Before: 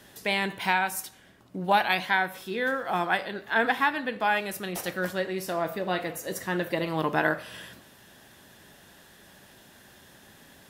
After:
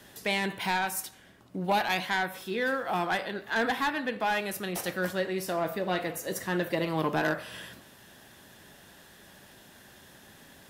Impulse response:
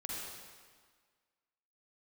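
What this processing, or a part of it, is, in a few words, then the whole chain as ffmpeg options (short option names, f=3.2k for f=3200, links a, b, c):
one-band saturation: -filter_complex "[0:a]acrossover=split=520|3600[a][b][c];[b]asoftclip=type=tanh:threshold=-24.5dB[d];[a][d][c]amix=inputs=3:normalize=0"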